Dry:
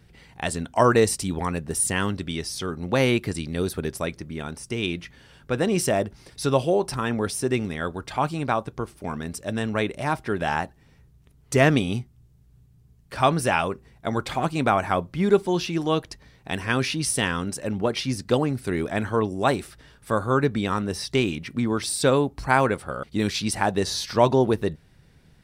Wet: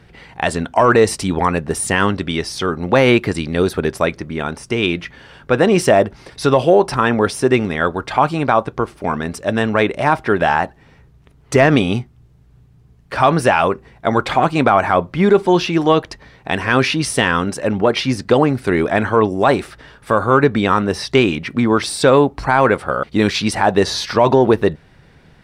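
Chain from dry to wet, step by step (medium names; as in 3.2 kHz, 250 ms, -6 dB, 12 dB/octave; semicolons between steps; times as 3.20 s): overdrive pedal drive 8 dB, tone 1.5 kHz, clips at -4 dBFS; loudness maximiser +12.5 dB; trim -1 dB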